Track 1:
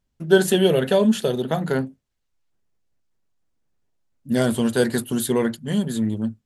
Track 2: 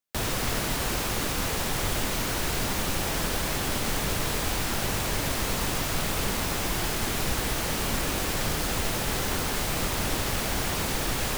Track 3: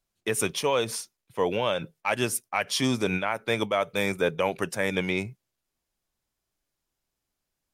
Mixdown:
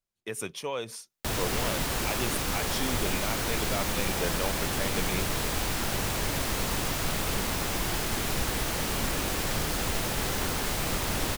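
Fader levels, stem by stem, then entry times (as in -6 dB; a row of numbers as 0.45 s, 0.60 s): mute, -1.5 dB, -8.5 dB; mute, 1.10 s, 0.00 s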